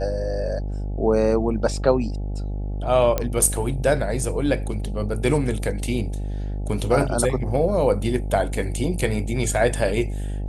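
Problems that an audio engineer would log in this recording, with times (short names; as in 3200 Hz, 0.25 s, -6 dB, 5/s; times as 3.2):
buzz 50 Hz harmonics 17 -27 dBFS
3.18 pop -8 dBFS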